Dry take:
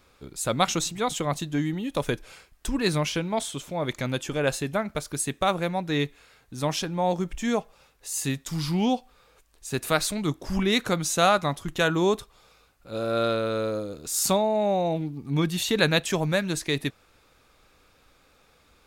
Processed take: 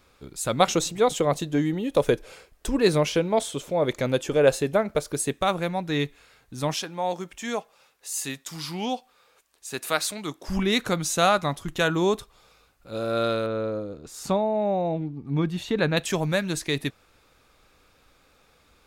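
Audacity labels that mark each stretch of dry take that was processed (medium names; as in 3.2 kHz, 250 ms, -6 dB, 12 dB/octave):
0.600000	5.330000	peaking EQ 480 Hz +9.5 dB 0.96 oct
6.740000	10.480000	high-pass 500 Hz 6 dB/octave
13.460000	15.970000	low-pass 1.4 kHz 6 dB/octave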